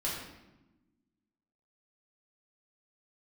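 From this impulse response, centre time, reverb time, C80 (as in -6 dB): 60 ms, 1.0 s, 4.5 dB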